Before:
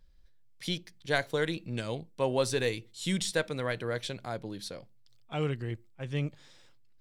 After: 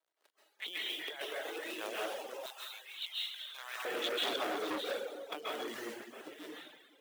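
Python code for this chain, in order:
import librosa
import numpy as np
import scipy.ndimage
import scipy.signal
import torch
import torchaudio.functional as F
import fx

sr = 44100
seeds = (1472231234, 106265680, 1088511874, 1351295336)

y = fx.lpc_vocoder(x, sr, seeds[0], excitation='pitch_kept', order=8)
y = fx.over_compress(y, sr, threshold_db=-39.0, ratio=-1.0)
y = fx.quant_float(y, sr, bits=2)
y = fx.step_gate(y, sr, bpm=72, pattern='.xxxxxxxxxxx..x.', floor_db=-12.0, edge_ms=4.5)
y = y + 10.0 ** (-19.5 / 20.0) * np.pad(y, (int(661 * sr / 1000.0), 0))[:len(y)]
y = fx.rev_plate(y, sr, seeds[1], rt60_s=1.3, hf_ratio=1.0, predelay_ms=120, drr_db=-6.5)
y = fx.dereverb_blind(y, sr, rt60_s=0.65)
y = fx.highpass(y, sr, hz=fx.steps((0.0, 450.0), (2.46, 940.0), (3.85, 340.0)), slope=24)
y = fx.transformer_sat(y, sr, knee_hz=2300.0)
y = y * librosa.db_to_amplitude(1.0)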